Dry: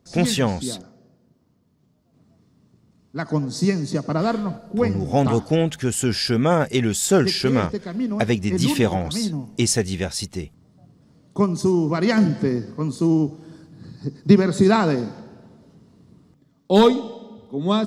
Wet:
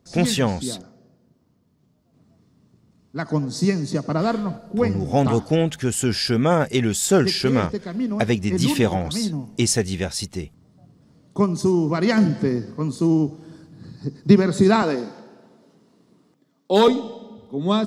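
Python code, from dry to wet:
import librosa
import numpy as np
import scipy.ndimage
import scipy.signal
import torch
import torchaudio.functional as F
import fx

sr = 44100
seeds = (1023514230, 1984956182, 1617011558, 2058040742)

y = fx.highpass(x, sr, hz=270.0, slope=12, at=(14.82, 16.88))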